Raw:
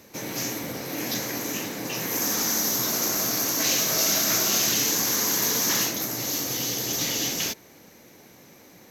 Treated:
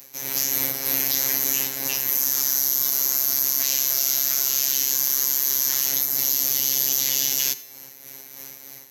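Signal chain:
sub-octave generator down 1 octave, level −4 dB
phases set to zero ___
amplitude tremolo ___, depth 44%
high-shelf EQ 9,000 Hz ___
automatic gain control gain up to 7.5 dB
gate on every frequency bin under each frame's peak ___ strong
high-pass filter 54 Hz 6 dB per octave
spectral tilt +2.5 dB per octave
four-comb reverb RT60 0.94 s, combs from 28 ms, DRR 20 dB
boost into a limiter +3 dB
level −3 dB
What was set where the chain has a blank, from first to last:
135 Hz, 3.2 Hz, +8 dB, −30 dB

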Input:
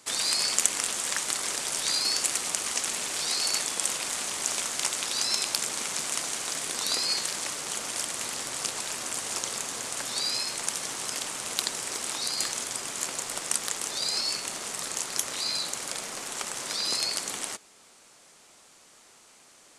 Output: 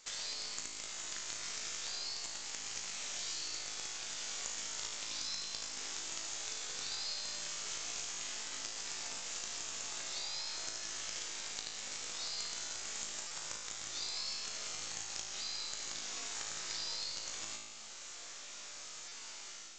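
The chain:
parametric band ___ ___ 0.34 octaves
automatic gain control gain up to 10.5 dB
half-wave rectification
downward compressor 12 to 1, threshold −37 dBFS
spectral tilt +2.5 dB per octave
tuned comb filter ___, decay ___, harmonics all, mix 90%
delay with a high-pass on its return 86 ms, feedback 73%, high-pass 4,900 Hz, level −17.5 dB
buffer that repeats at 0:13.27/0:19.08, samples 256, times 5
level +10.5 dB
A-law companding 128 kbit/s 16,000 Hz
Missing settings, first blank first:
1,000 Hz, −2.5 dB, 54 Hz, 1.4 s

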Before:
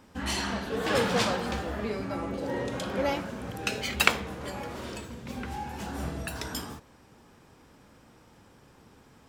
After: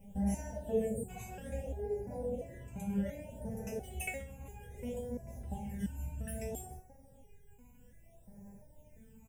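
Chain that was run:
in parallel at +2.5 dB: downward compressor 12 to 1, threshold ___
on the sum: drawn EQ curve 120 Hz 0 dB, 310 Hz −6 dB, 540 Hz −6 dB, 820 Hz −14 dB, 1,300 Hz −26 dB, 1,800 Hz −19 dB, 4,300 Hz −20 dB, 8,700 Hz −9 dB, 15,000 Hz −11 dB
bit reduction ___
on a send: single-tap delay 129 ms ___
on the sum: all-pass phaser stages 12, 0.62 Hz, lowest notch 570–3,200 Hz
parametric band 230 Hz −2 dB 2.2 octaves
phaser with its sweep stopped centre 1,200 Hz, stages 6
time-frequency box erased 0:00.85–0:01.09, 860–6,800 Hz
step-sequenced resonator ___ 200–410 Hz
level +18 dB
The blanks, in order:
−37 dBFS, 12 bits, −18.5 dB, 2.9 Hz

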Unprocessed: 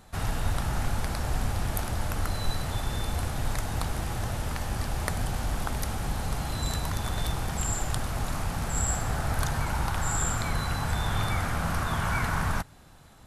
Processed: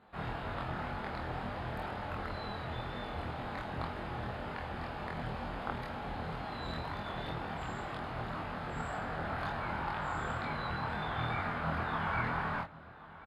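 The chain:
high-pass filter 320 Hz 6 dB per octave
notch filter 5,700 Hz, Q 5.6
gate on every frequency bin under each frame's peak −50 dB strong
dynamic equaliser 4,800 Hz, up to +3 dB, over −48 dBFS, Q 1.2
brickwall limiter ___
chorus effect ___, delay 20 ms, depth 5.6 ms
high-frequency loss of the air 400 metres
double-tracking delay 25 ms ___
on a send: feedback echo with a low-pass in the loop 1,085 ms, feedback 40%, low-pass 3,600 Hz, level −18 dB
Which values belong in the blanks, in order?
−14 dBFS, 2 Hz, −2.5 dB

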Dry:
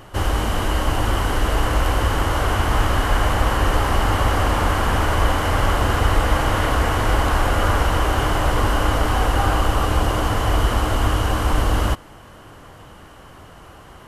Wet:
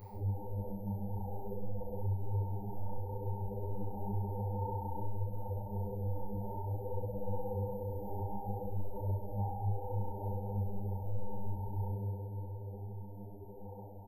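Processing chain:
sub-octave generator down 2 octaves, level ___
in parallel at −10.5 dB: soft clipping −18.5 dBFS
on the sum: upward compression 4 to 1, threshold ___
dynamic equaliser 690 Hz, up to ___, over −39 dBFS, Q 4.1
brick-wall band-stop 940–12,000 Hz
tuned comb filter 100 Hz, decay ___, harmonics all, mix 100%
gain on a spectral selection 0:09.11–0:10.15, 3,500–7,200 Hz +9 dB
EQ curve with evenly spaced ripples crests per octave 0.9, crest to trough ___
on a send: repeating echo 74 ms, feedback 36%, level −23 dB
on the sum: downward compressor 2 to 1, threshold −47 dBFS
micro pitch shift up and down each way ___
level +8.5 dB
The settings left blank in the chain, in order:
−5 dB, −30 dBFS, −4 dB, 1.9 s, 13 dB, 58 cents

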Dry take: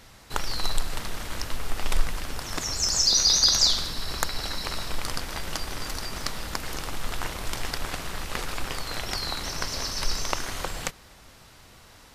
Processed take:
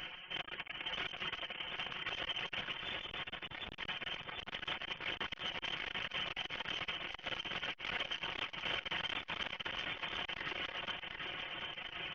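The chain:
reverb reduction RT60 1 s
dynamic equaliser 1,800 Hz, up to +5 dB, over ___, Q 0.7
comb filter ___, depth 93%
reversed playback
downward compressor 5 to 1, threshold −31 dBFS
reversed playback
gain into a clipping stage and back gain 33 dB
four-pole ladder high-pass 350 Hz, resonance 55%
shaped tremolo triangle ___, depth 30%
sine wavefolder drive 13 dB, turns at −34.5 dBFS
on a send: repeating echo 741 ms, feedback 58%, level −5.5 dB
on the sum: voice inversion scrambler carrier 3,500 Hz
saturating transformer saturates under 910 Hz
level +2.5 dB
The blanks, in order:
−40 dBFS, 5.4 ms, 1.1 Hz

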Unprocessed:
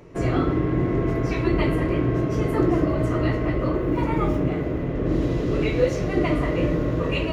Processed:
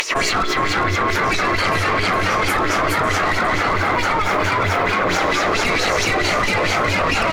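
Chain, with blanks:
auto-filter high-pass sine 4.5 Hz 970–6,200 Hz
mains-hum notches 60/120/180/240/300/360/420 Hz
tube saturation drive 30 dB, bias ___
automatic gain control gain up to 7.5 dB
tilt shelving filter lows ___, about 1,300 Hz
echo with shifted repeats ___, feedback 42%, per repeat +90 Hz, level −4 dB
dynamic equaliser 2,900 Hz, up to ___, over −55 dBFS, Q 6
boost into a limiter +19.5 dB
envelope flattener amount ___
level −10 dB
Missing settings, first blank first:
0.8, +6 dB, 410 ms, −4 dB, 100%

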